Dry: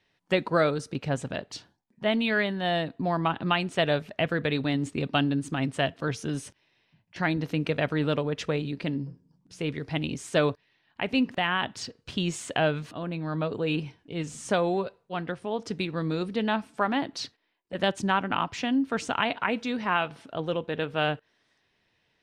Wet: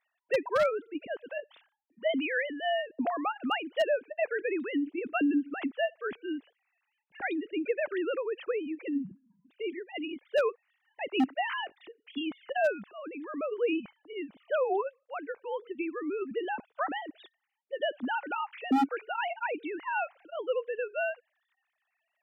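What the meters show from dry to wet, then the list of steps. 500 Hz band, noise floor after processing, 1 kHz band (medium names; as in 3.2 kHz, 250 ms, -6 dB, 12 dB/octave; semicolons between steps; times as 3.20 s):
-2.0 dB, -82 dBFS, -4.0 dB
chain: formants replaced by sine waves; wavefolder -15.5 dBFS; trim -3 dB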